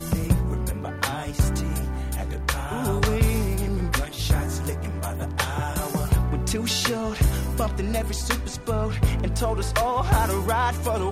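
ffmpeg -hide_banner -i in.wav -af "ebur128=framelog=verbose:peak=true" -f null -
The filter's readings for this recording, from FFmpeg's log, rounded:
Integrated loudness:
  I:         -25.2 LUFS
  Threshold: -35.2 LUFS
Loudness range:
  LRA:         1.5 LU
  Threshold: -45.3 LUFS
  LRA low:   -26.0 LUFS
  LRA high:  -24.5 LUFS
True peak:
  Peak:       -6.6 dBFS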